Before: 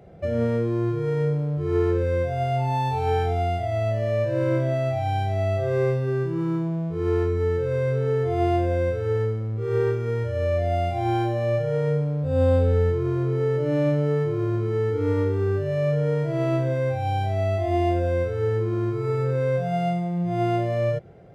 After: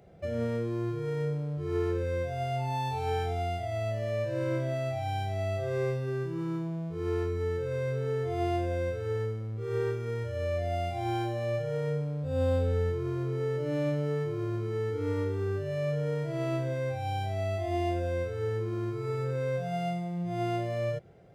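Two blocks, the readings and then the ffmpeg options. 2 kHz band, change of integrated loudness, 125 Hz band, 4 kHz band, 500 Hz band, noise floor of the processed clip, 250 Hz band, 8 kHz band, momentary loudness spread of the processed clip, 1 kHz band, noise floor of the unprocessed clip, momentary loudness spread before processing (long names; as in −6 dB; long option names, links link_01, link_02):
−5.5 dB, −7.5 dB, −8.0 dB, −3.0 dB, −7.5 dB, −35 dBFS, −8.0 dB, can't be measured, 3 LU, −7.5 dB, −27 dBFS, 3 LU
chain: -af "highshelf=frequency=2700:gain=8,volume=-8dB"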